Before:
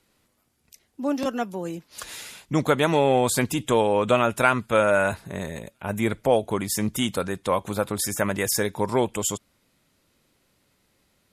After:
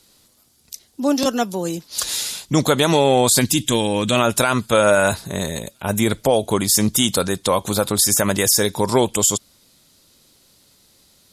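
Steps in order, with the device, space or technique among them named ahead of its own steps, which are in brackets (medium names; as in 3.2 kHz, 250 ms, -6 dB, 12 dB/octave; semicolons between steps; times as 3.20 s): time-frequency box 3.41–4.16 s, 350–1500 Hz -8 dB; over-bright horn tweeter (resonant high shelf 3.1 kHz +8 dB, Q 1.5; peak limiter -12.5 dBFS, peak gain reduction 10.5 dB); trim +7 dB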